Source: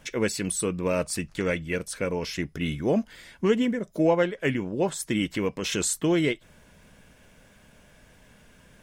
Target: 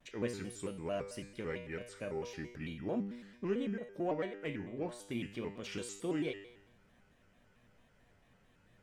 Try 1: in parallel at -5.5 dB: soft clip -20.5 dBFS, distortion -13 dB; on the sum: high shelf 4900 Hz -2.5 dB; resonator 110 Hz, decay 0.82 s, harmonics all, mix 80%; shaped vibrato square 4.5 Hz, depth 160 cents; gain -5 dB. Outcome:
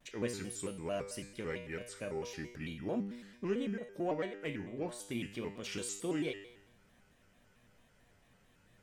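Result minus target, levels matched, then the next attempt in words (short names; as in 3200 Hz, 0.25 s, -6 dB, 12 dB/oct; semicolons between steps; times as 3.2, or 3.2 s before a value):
8000 Hz band +5.5 dB
in parallel at -5.5 dB: soft clip -20.5 dBFS, distortion -13 dB; on the sum: high shelf 4900 Hz -11 dB; resonator 110 Hz, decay 0.82 s, harmonics all, mix 80%; shaped vibrato square 4.5 Hz, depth 160 cents; gain -5 dB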